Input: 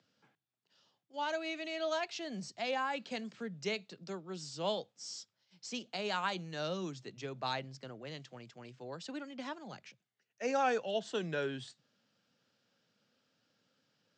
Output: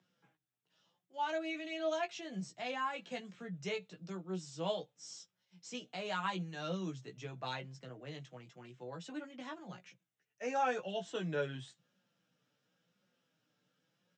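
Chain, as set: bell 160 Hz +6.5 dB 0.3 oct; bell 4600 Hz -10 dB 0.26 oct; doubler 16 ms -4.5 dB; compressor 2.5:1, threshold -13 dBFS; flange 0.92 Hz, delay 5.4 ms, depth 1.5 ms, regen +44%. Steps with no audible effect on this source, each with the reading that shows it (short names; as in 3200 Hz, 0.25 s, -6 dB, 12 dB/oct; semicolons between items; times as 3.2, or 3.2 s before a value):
compressor, threshold -13 dBFS: input peak -18.0 dBFS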